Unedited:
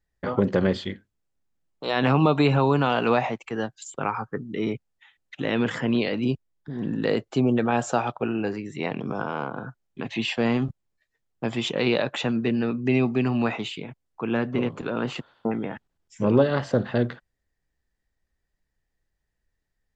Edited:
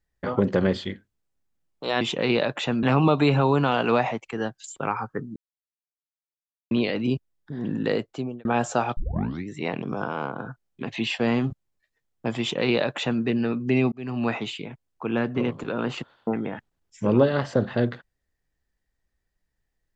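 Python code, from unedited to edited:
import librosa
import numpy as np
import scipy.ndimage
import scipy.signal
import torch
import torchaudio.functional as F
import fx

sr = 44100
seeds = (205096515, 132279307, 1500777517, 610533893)

y = fx.edit(x, sr, fx.silence(start_s=4.54, length_s=1.35),
    fx.fade_out_span(start_s=7.05, length_s=0.58),
    fx.tape_start(start_s=8.15, length_s=0.51),
    fx.duplicate(start_s=11.58, length_s=0.82, to_s=2.01),
    fx.fade_in_span(start_s=13.1, length_s=0.39), tone=tone)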